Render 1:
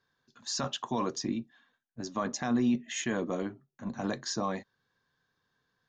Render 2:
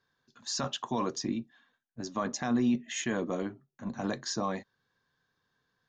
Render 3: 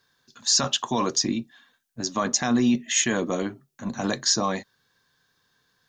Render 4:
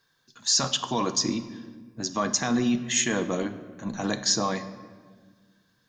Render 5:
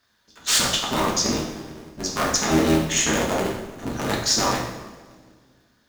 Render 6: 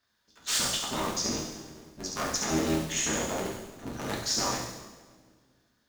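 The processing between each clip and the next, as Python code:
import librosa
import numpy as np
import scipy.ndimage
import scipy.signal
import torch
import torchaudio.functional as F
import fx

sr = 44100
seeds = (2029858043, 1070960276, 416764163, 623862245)

y1 = x
y2 = fx.high_shelf(y1, sr, hz=3100.0, db=11.0)
y2 = y2 * librosa.db_to_amplitude(6.0)
y3 = fx.room_shoebox(y2, sr, seeds[0], volume_m3=1800.0, walls='mixed', distance_m=0.62)
y3 = y3 * librosa.db_to_amplitude(-2.0)
y4 = fx.cycle_switch(y3, sr, every=3, mode='inverted')
y4 = fx.rev_double_slope(y4, sr, seeds[1], early_s=0.71, late_s=2.2, knee_db=-25, drr_db=-2.0)
y5 = fx.echo_wet_highpass(y4, sr, ms=69, feedback_pct=62, hz=4800.0, wet_db=-3.0)
y5 = y5 * librosa.db_to_amplitude(-9.0)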